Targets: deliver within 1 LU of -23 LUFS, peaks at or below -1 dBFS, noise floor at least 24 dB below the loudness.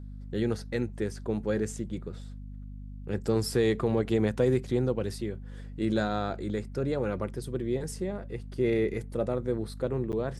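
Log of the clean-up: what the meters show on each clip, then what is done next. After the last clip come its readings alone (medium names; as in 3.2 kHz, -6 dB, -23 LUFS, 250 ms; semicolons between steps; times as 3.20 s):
dropouts 1; longest dropout 9.0 ms; hum 50 Hz; highest harmonic 250 Hz; hum level -39 dBFS; loudness -30.5 LUFS; peak level -12.5 dBFS; loudness target -23.0 LUFS
-> interpolate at 10.12 s, 9 ms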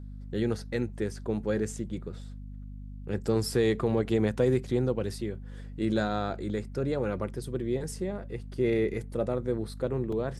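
dropouts 0; hum 50 Hz; highest harmonic 250 Hz; hum level -39 dBFS
-> hum notches 50/100/150/200/250 Hz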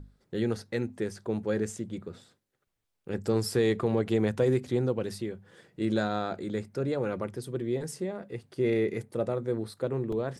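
hum not found; loudness -30.5 LUFS; peak level -13.0 dBFS; loudness target -23.0 LUFS
-> trim +7.5 dB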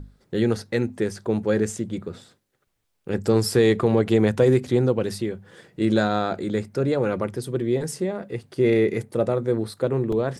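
loudness -23.0 LUFS; peak level -5.5 dBFS; noise floor -73 dBFS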